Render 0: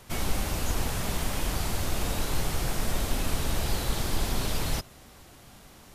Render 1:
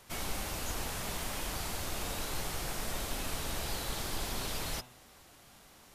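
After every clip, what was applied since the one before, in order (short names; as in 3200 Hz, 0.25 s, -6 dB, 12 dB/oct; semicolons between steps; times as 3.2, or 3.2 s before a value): low shelf 330 Hz -7.5 dB; de-hum 124 Hz, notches 30; gain -4 dB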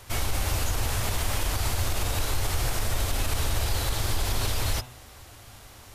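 resonant low shelf 130 Hz +6 dB, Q 3; limiter -25 dBFS, peak gain reduction 6.5 dB; gain +8.5 dB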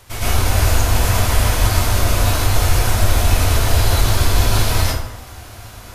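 plate-style reverb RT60 0.78 s, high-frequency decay 0.55×, pre-delay 95 ms, DRR -9.5 dB; gain +1 dB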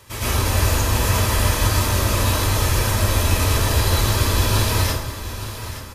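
notch comb 720 Hz; echo 0.871 s -12 dB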